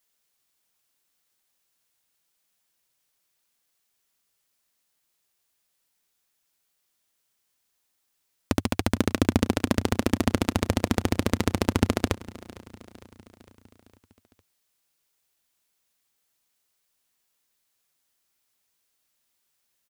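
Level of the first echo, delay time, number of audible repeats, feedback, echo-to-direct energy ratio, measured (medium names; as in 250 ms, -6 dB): -19.5 dB, 456 ms, 4, 57%, -18.0 dB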